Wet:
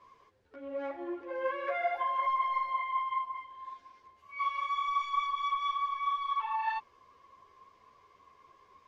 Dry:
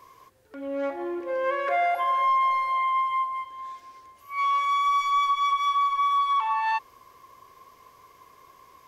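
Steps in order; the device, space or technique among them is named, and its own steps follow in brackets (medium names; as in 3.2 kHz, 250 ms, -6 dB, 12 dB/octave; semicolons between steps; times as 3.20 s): string-machine ensemble chorus (three-phase chorus; low-pass 4.5 kHz 12 dB/octave); trim -4.5 dB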